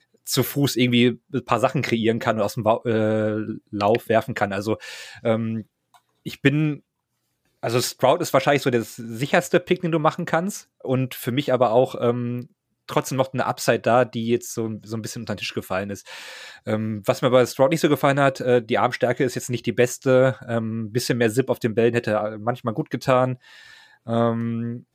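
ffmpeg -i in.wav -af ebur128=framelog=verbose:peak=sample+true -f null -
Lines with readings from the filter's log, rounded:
Integrated loudness:
  I:         -22.1 LUFS
  Threshold: -32.6 LUFS
Loudness range:
  LRA:         4.2 LU
  Threshold: -42.6 LUFS
  LRA low:   -24.9 LUFS
  LRA high:  -20.7 LUFS
Sample peak:
  Peak:       -3.6 dBFS
True peak:
  Peak:       -3.6 dBFS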